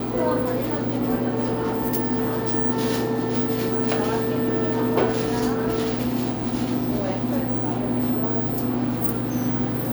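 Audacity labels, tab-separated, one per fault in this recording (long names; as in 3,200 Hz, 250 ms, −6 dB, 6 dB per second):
1.410000	2.550000	clipping −18.5 dBFS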